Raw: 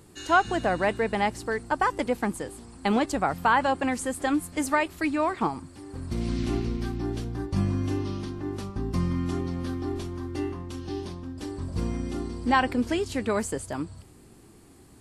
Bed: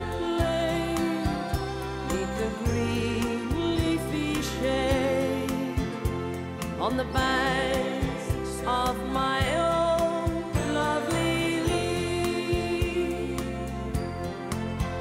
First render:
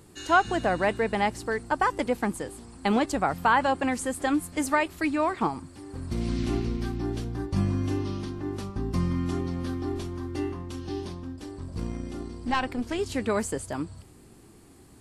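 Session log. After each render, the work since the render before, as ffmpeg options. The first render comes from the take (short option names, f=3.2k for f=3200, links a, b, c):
-filter_complex "[0:a]asettb=1/sr,asplit=3[a][b][c];[a]atrim=end=11.364[d];[b]atrim=start=11.36:end=12.99,asetpts=PTS-STARTPTS,afade=t=in:d=0.004:c=qsin,afade=t=out:st=1.626:d=0.004:c=qsin,aeval=exprs='(tanh(5.01*val(0)+0.75)-tanh(0.75))/5.01':c=same[e];[c]atrim=start=12.986[f];[d][e]acrossfade=d=0.004:c1=hsin:c2=qsin[g];[g][f]acrossfade=d=0.004:c1=qsin:c2=hsin"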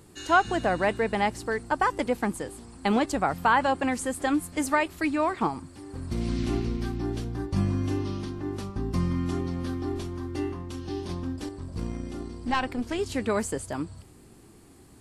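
-filter_complex "[0:a]asettb=1/sr,asplit=3[a][b][c];[a]atrim=end=11.094[d];[b]atrim=start=11.09:end=11.49,asetpts=PTS-STARTPTS,afade=t=in:d=0.004:c=qsin,afade=t=out:st=0.396:d=0.004:c=qsin,acontrast=28[e];[c]atrim=start=11.486[f];[d][e]acrossfade=d=0.004:c1=hsin:c2=qsin[g];[g][f]acrossfade=d=0.004:c1=qsin:c2=hsin"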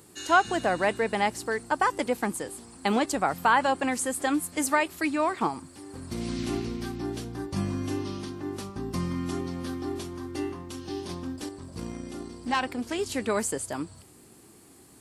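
-af "highpass=f=180:p=1,highshelf=f=6.2k:g=7.5"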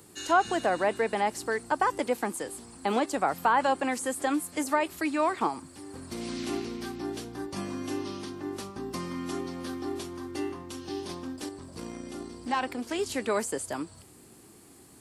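-filter_complex "[0:a]acrossover=split=230|1200[a][b][c];[a]acompressor=threshold=-47dB:ratio=6[d];[c]alimiter=level_in=2.5dB:limit=-24dB:level=0:latency=1:release=30,volume=-2.5dB[e];[d][b][e]amix=inputs=3:normalize=0"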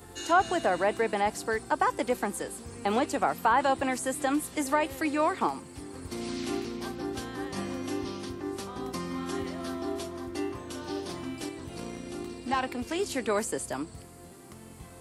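-filter_complex "[1:a]volume=-18.5dB[a];[0:a][a]amix=inputs=2:normalize=0"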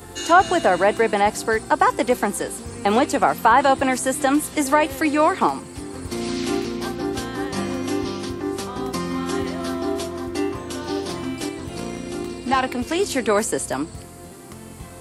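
-af "volume=9dB"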